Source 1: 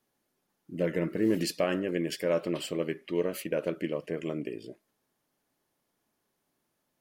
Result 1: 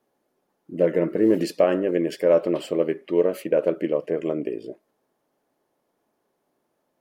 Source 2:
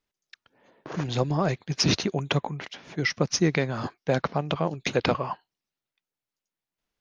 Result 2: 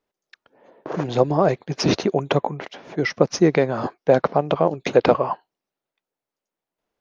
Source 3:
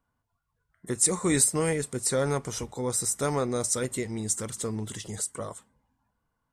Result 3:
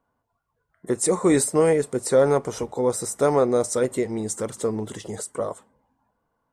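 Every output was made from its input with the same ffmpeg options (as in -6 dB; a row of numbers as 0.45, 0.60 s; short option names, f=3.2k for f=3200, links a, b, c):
-af "equalizer=f=540:w=0.45:g=13.5,volume=-3dB"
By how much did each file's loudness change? +8.5, +6.0, +4.5 LU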